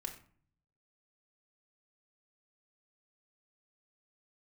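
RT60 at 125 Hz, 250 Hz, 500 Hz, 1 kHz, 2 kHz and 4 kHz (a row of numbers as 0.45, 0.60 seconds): 1.0, 0.75, 0.50, 0.50, 0.40, 0.30 seconds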